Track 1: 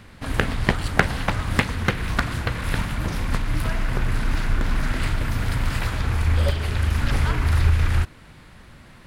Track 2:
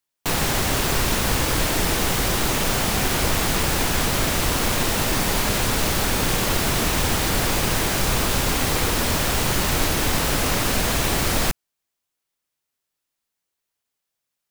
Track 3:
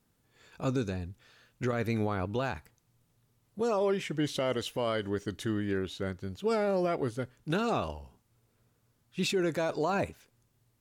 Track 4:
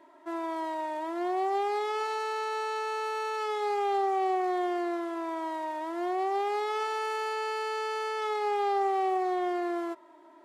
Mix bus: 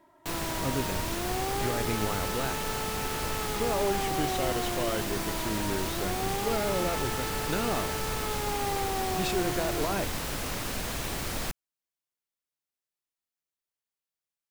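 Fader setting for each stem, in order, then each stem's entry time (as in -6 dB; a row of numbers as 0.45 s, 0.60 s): mute, -12.0 dB, -2.0 dB, -5.0 dB; mute, 0.00 s, 0.00 s, 0.00 s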